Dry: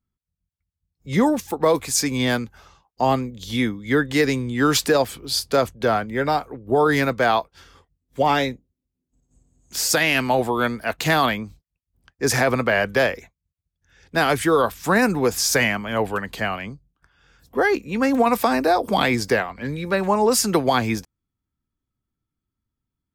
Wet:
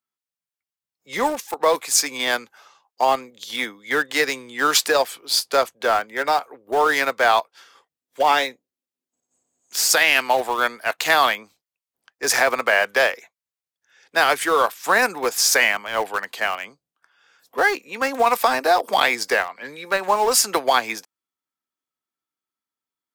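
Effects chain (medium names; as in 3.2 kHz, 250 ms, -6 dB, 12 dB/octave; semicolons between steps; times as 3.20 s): high-pass 610 Hz 12 dB/octave; in parallel at -8.5 dB: small samples zeroed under -22 dBFS; on the sum: trim +1 dB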